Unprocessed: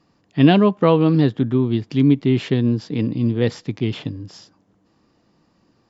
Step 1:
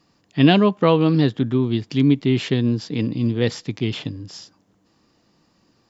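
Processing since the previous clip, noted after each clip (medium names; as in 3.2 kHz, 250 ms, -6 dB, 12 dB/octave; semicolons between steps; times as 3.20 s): treble shelf 2.6 kHz +8 dB; trim -1.5 dB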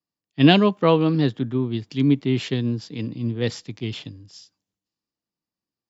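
three bands expanded up and down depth 70%; trim -3 dB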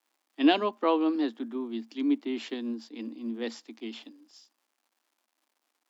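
crackle 320 per s -51 dBFS; rippled Chebyshev high-pass 220 Hz, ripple 6 dB; trim -4 dB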